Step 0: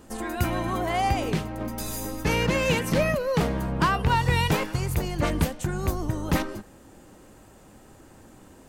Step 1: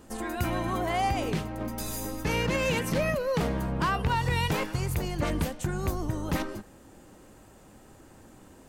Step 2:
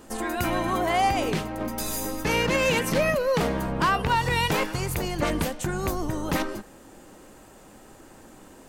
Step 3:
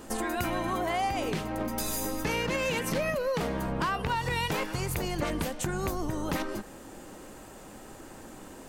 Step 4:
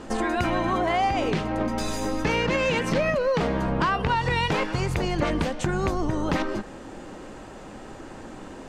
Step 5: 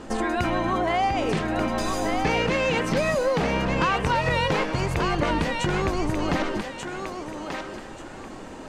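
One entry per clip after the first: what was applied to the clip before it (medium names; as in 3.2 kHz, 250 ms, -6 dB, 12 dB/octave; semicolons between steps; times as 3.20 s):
peak limiter -16 dBFS, peak gain reduction 5 dB; trim -2 dB
peaking EQ 83 Hz -8 dB 2.2 oct; trim +5.5 dB
compression 3:1, threshold -32 dBFS, peak gain reduction 10.5 dB; trim +2.5 dB
distance through air 97 m; trim +6.5 dB
thinning echo 1186 ms, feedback 29%, high-pass 520 Hz, level -4 dB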